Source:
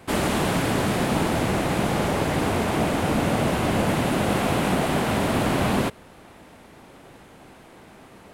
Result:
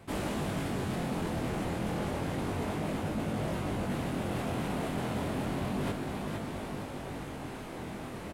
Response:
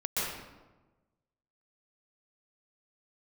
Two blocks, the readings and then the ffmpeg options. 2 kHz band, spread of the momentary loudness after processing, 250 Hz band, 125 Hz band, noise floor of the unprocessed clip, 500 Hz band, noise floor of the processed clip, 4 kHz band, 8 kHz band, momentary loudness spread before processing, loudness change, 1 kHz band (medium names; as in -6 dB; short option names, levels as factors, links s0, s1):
-12.5 dB, 7 LU, -9.5 dB, -8.5 dB, -49 dBFS, -11.0 dB, -41 dBFS, -13.0 dB, -13.0 dB, 1 LU, -11.5 dB, -12.0 dB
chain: -af "asoftclip=type=tanh:threshold=0.158,lowshelf=f=390:g=5.5,aecho=1:1:470|940|1410|1880:0.168|0.0672|0.0269|0.0107,flanger=delay=19:depth=5.3:speed=0.31,areverse,acompressor=threshold=0.01:ratio=5,areverse,volume=2.24"